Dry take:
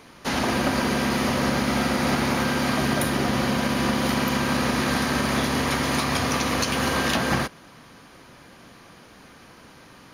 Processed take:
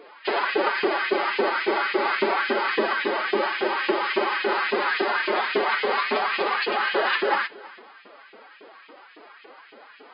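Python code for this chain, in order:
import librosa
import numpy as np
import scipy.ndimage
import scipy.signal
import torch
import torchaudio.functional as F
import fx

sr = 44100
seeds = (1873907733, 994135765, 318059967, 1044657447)

y = fx.bass_treble(x, sr, bass_db=9, treble_db=-9)
y = fx.filter_lfo_highpass(y, sr, shape='saw_up', hz=3.6, low_hz=320.0, high_hz=2700.0, q=2.1)
y = y + 10.0 ** (-21.0 / 20.0) * np.pad(y, (int(324 * sr / 1000.0), 0))[:len(y)]
y = fx.pitch_keep_formants(y, sr, semitones=8.0)
y = fx.brickwall_bandpass(y, sr, low_hz=170.0, high_hz=5100.0)
y = y * 10.0 ** (1.0 / 20.0)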